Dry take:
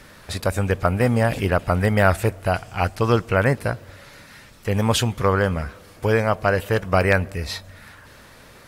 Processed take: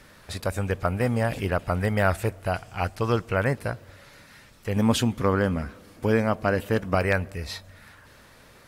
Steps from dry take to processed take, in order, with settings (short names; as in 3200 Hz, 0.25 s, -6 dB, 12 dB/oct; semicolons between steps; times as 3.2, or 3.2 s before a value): 4.76–6.95 bell 250 Hz +10 dB 0.79 oct; gain -5.5 dB